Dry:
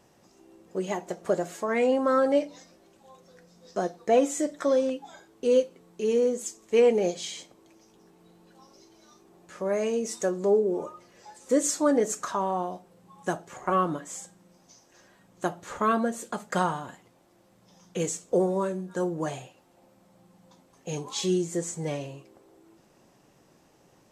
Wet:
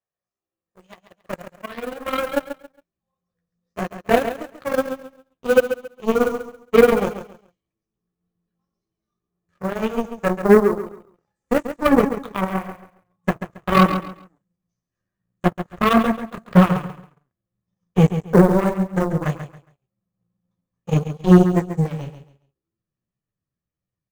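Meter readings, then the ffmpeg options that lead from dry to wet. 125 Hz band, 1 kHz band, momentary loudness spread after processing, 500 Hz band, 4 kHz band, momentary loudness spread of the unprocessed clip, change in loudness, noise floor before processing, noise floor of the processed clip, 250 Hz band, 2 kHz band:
+16.5 dB, +6.5 dB, 19 LU, +5.0 dB, +4.5 dB, 14 LU, +8.0 dB, −61 dBFS, below −85 dBFS, +10.0 dB, +10.0 dB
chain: -filter_complex "[0:a]acrossover=split=3200[link_01][link_02];[link_02]acompressor=threshold=-47dB:ratio=4:attack=1:release=60[link_03];[link_01][link_03]amix=inputs=2:normalize=0,equalizer=frequency=1500:width_type=o:width=2.2:gain=9,aecho=1:1:1.7:0.46,flanger=delay=8.7:depth=9.2:regen=-5:speed=1.8:shape=triangular,acrossover=split=1200[link_04][link_05];[link_04]dynaudnorm=framelen=500:gausssize=11:maxgain=4.5dB[link_06];[link_05]alimiter=level_in=1.5dB:limit=-24dB:level=0:latency=1:release=304,volume=-1.5dB[link_07];[link_06][link_07]amix=inputs=2:normalize=0,acrusher=bits=7:mode=log:mix=0:aa=0.000001,asubboost=boost=10:cutoff=200,aeval=exprs='0.631*(cos(1*acos(clip(val(0)/0.631,-1,1)))-cos(1*PI/2))+0.0891*(cos(7*acos(clip(val(0)/0.631,-1,1)))-cos(7*PI/2))':channel_layout=same,aecho=1:1:137|274|411:0.316|0.0791|0.0198,volume=3.5dB"

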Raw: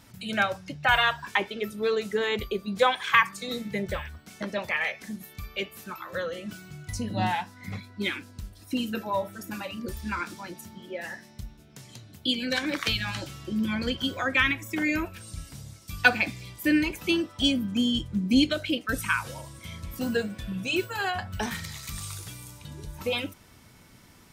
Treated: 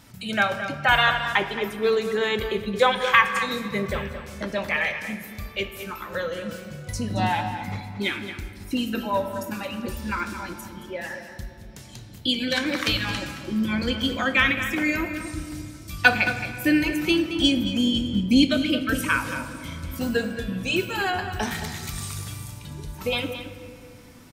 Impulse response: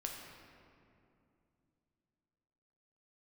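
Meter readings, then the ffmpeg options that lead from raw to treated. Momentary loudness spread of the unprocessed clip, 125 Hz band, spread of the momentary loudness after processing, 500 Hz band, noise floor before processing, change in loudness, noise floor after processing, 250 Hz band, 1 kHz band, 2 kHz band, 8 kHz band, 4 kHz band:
18 LU, +4.5 dB, 16 LU, +4.0 dB, −54 dBFS, +3.5 dB, −43 dBFS, +4.0 dB, +4.0 dB, +3.5 dB, +3.0 dB, +3.5 dB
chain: -filter_complex "[0:a]asplit=2[link_01][link_02];[link_02]adelay=221.6,volume=-10dB,highshelf=frequency=4000:gain=-4.99[link_03];[link_01][link_03]amix=inputs=2:normalize=0,asplit=2[link_04][link_05];[1:a]atrim=start_sample=2205[link_06];[link_05][link_06]afir=irnorm=-1:irlink=0,volume=-1.5dB[link_07];[link_04][link_07]amix=inputs=2:normalize=0,volume=-1dB"

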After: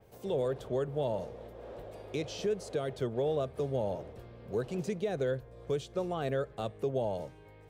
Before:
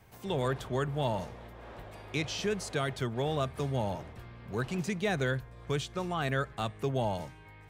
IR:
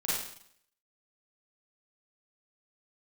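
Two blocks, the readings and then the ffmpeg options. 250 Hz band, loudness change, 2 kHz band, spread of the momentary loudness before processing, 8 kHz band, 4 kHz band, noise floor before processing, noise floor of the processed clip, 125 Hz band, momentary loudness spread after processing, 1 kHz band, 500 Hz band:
−3.0 dB, −1.5 dB, −10.5 dB, 15 LU, −7.0 dB, −7.5 dB, −52 dBFS, −54 dBFS, −5.0 dB, 13 LU, −5.5 dB, +2.0 dB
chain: -af "equalizer=frequency=500:width_type=o:width=1:gain=12,equalizer=frequency=1000:width_type=o:width=1:gain=-4,equalizer=frequency=2000:width_type=o:width=1:gain=-5,alimiter=limit=-19.5dB:level=0:latency=1:release=268,adynamicequalizer=threshold=0.00251:dfrequency=4300:dqfactor=0.7:tfrequency=4300:tqfactor=0.7:attack=5:release=100:ratio=0.375:range=2:mode=cutabove:tftype=highshelf,volume=-3.5dB"

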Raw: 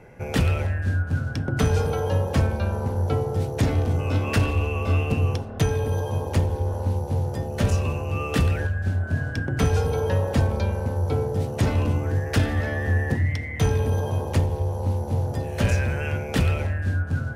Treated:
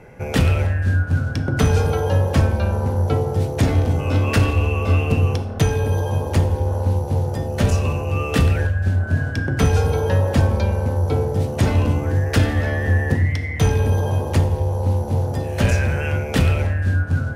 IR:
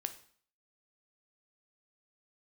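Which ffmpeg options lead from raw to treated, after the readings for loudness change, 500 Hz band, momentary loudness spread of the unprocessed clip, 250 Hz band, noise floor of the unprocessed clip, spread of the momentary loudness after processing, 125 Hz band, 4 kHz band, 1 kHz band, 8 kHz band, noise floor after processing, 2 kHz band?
+4.5 dB, +4.0 dB, 4 LU, +4.5 dB, −32 dBFS, 4 LU, +5.0 dB, +4.5 dB, +4.0 dB, +4.5 dB, −27 dBFS, +4.5 dB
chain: -filter_complex "[0:a]asplit=2[link_01][link_02];[1:a]atrim=start_sample=2205,asetrate=34839,aresample=44100[link_03];[link_02][link_03]afir=irnorm=-1:irlink=0,volume=5.5dB[link_04];[link_01][link_04]amix=inputs=2:normalize=0,volume=-5dB"

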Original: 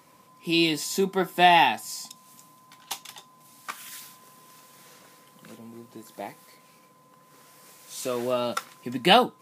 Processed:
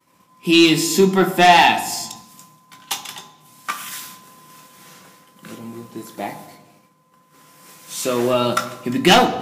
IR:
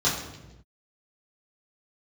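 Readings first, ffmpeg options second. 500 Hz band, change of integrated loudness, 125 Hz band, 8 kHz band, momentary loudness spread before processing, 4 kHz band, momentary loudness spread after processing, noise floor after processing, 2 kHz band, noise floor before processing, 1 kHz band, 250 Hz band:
+7.5 dB, +7.5 dB, +10.5 dB, +10.5 dB, 22 LU, +7.0 dB, 22 LU, −57 dBFS, +7.5 dB, −57 dBFS, +6.5 dB, +10.5 dB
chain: -filter_complex "[0:a]aeval=exprs='0.596*(cos(1*acos(clip(val(0)/0.596,-1,1)))-cos(1*PI/2))+0.168*(cos(5*acos(clip(val(0)/0.596,-1,1)))-cos(5*PI/2))':channel_layout=same,agate=range=-33dB:threshold=-40dB:ratio=3:detection=peak,asplit=2[link_01][link_02];[link_02]equalizer=frequency=130:width_type=o:width=0.77:gain=-3.5[link_03];[1:a]atrim=start_sample=2205[link_04];[link_03][link_04]afir=irnorm=-1:irlink=0,volume=-19dB[link_05];[link_01][link_05]amix=inputs=2:normalize=0,volume=2dB"

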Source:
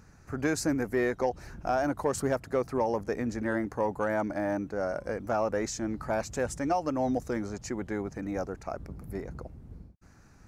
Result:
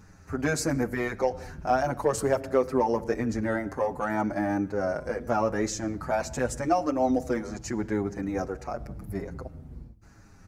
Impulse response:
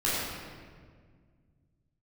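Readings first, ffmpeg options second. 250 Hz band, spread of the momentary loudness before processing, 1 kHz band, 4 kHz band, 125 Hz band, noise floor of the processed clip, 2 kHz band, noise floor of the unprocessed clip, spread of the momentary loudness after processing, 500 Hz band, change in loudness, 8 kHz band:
+2.5 dB, 11 LU, +4.0 dB, +3.0 dB, +3.5 dB, −52 dBFS, +2.5 dB, −56 dBFS, 11 LU, +2.5 dB, +3.0 dB, +3.0 dB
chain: -filter_complex "[0:a]asplit=2[link_01][link_02];[1:a]atrim=start_sample=2205,afade=type=out:start_time=0.26:duration=0.01,atrim=end_sample=11907,lowshelf=frequency=420:gain=4.5[link_03];[link_02][link_03]afir=irnorm=-1:irlink=0,volume=-28dB[link_04];[link_01][link_04]amix=inputs=2:normalize=0,asplit=2[link_05][link_06];[link_06]adelay=6.9,afreqshift=-0.88[link_07];[link_05][link_07]amix=inputs=2:normalize=1,volume=5.5dB"

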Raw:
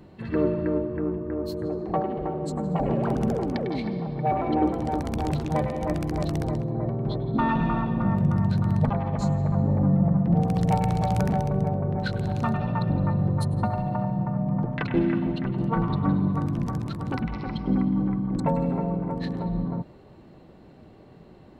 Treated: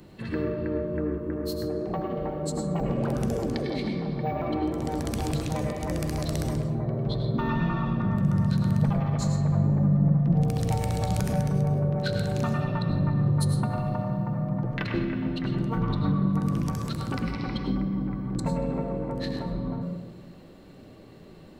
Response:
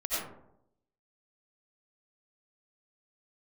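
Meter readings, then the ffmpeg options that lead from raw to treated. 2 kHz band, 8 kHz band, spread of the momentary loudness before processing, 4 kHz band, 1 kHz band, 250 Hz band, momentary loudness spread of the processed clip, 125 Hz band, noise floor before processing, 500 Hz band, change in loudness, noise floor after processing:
−0.5 dB, can't be measured, 7 LU, +4.0 dB, −5.5 dB, −2.0 dB, 7 LU, 0.0 dB, −50 dBFS, −2.0 dB, −1.5 dB, −48 dBFS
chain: -filter_complex "[0:a]highshelf=frequency=3900:gain=12,acrossover=split=150[link_01][link_02];[link_02]acompressor=threshold=-28dB:ratio=3[link_03];[link_01][link_03]amix=inputs=2:normalize=0,flanger=delay=5.6:depth=9.2:regen=88:speed=0.39:shape=triangular,asplit=2[link_04][link_05];[link_05]asuperstop=centerf=820:order=4:qfactor=2.2[link_06];[1:a]atrim=start_sample=2205,asetrate=39249,aresample=44100[link_07];[link_06][link_07]afir=irnorm=-1:irlink=0,volume=-9dB[link_08];[link_04][link_08]amix=inputs=2:normalize=0,volume=2dB"

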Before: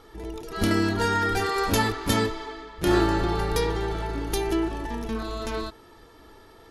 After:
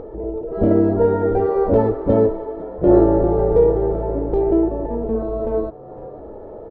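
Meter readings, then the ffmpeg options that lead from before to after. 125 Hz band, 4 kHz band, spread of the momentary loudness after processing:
+5.5 dB, below −25 dB, 19 LU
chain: -filter_complex "[0:a]lowpass=frequency=560:width_type=q:width=4.9,asplit=2[link_01][link_02];[link_02]asplit=3[link_03][link_04][link_05];[link_03]adelay=499,afreqshift=82,volume=-21dB[link_06];[link_04]adelay=998,afreqshift=164,volume=-30.1dB[link_07];[link_05]adelay=1497,afreqshift=246,volume=-39.2dB[link_08];[link_06][link_07][link_08]amix=inputs=3:normalize=0[link_09];[link_01][link_09]amix=inputs=2:normalize=0,acompressor=mode=upward:threshold=-32dB:ratio=2.5,volume=5dB"

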